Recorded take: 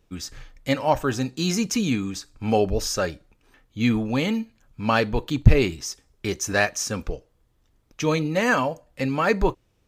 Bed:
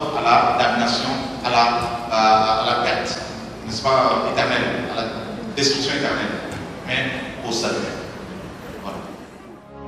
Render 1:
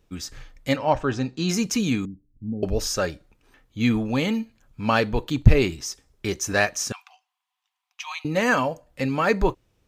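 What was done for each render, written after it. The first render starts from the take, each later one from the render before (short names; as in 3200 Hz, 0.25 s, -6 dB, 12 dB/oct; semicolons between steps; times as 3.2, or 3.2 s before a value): 0.76–1.49 air absorption 110 m; 2.05–2.63 ladder low-pass 300 Hz, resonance 30%; 6.92–8.25 rippled Chebyshev high-pass 720 Hz, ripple 9 dB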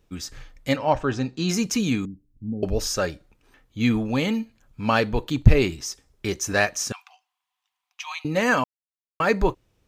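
8.64–9.2 mute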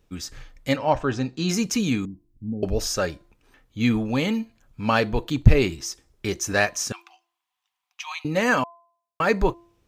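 de-hum 341.8 Hz, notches 3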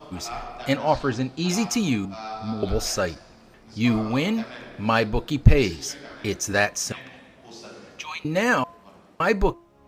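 add bed -20 dB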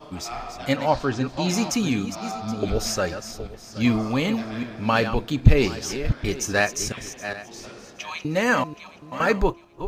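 regenerating reverse delay 0.386 s, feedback 43%, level -10 dB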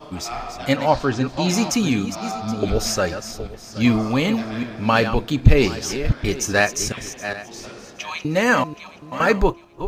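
gain +3.5 dB; limiter -1 dBFS, peak gain reduction 2.5 dB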